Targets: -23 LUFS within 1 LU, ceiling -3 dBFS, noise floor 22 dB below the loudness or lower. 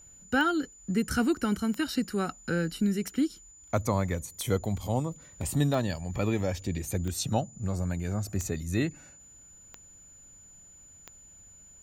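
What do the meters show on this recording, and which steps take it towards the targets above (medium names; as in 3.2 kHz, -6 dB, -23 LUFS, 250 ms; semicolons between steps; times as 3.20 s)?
clicks found 9; steady tone 7 kHz; tone level -51 dBFS; loudness -30.0 LUFS; peak level -13.0 dBFS; loudness target -23.0 LUFS
-> de-click; band-stop 7 kHz, Q 30; trim +7 dB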